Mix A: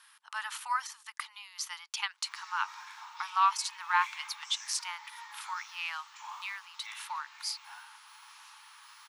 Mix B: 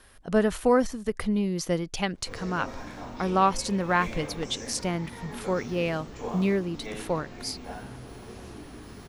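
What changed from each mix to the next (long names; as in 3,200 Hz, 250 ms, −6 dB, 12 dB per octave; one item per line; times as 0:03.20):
master: remove Chebyshev high-pass with heavy ripple 860 Hz, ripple 3 dB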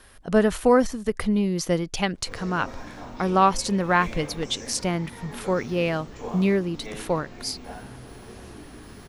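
speech +3.5 dB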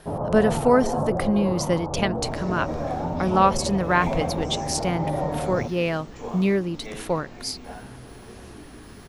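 first sound: unmuted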